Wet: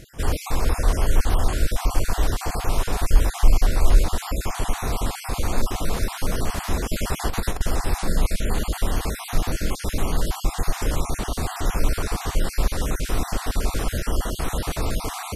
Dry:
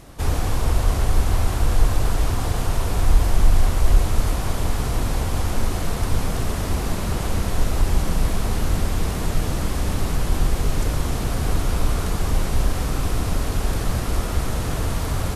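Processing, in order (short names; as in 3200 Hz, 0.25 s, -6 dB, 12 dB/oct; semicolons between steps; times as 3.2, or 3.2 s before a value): random spectral dropouts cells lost 34%; dynamic EQ 100 Hz, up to -7 dB, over -34 dBFS, Q 0.82; 6.93–7.61 negative-ratio compressor -23 dBFS, ratio -0.5; gain +2 dB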